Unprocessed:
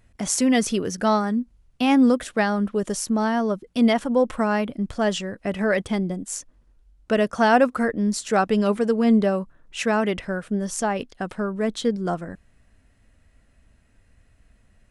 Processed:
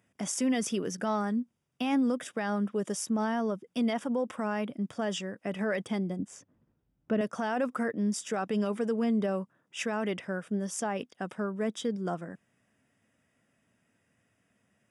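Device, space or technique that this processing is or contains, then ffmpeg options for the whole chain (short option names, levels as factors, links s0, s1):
PA system with an anti-feedback notch: -filter_complex "[0:a]asettb=1/sr,asplit=3[s0][s1][s2];[s0]atrim=end=6.194[s3];[s1]atrim=start=6.19:end=7.21,asetpts=PTS-STARTPTS,afade=t=in:d=0.004:c=qsin,afade=t=out:st=1.016:d=0.004:c=qsin,aemphasis=mode=reproduction:type=riaa[s4];[s2]atrim=start=7.206[s5];[s3][s4]acrossfade=d=0.004:c1=hsin:c2=qsin[s6];[s6][s5]acrossfade=d=0.004:c1=qsin:c2=hsin,highpass=f=130:w=0.5412,highpass=f=130:w=1.3066,asuperstop=centerf=4200:order=20:qfactor=6.6,alimiter=limit=0.188:level=0:latency=1:release=41,volume=0.473"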